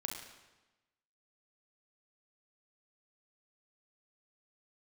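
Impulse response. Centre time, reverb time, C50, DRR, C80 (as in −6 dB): 46 ms, 1.1 s, 3.5 dB, 1.5 dB, 6.0 dB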